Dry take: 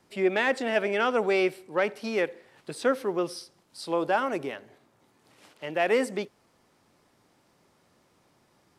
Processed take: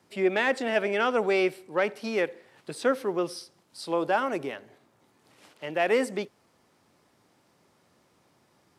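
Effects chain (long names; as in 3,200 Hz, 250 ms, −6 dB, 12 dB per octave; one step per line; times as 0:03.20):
high-pass filter 58 Hz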